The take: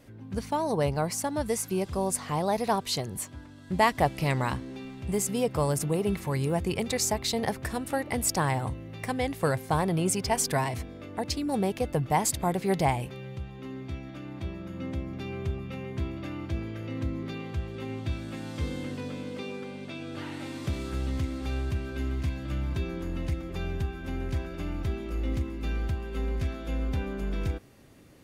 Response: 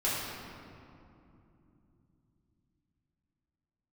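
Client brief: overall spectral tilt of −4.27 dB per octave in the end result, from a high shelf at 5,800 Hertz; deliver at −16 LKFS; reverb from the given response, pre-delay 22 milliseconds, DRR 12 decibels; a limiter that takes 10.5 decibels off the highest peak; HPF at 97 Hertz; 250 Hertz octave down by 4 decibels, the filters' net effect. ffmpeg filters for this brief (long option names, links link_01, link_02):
-filter_complex "[0:a]highpass=97,equalizer=frequency=250:width_type=o:gain=-5.5,highshelf=frequency=5800:gain=4.5,alimiter=limit=-20dB:level=0:latency=1,asplit=2[link_01][link_02];[1:a]atrim=start_sample=2205,adelay=22[link_03];[link_02][link_03]afir=irnorm=-1:irlink=0,volume=-21dB[link_04];[link_01][link_04]amix=inputs=2:normalize=0,volume=17.5dB"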